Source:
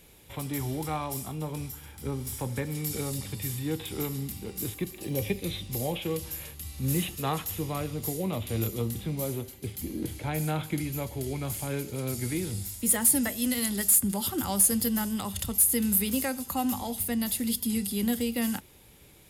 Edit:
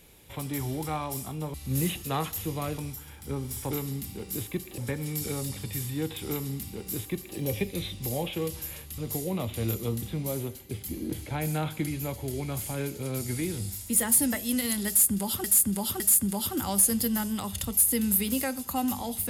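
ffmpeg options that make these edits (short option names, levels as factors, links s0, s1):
-filter_complex "[0:a]asplit=8[s0][s1][s2][s3][s4][s5][s6][s7];[s0]atrim=end=1.542[s8];[s1]atrim=start=6.668:end=7.912[s9];[s2]atrim=start=1.538:end=2.472[s10];[s3]atrim=start=3.978:end=5.052[s11];[s4]atrim=start=2.468:end=6.672[s12];[s5]atrim=start=7.908:end=14.372[s13];[s6]atrim=start=13.808:end=14.372[s14];[s7]atrim=start=13.808[s15];[s8][s9]acrossfade=d=0.004:c1=hsin:c2=hsin[s16];[s16][s10]acrossfade=d=0.004:c1=hsin:c2=hsin[s17];[s17][s11]acrossfade=d=0.004:c1=hsin:c2=hsin[s18];[s18][s12]acrossfade=d=0.004:c1=hsin:c2=hsin[s19];[s19][s13]acrossfade=d=0.004:c1=hsin:c2=hsin[s20];[s20][s14]acrossfade=d=0.004:c1=hsin:c2=hsin[s21];[s21][s15]acrossfade=d=0.004:c1=hsin:c2=hsin"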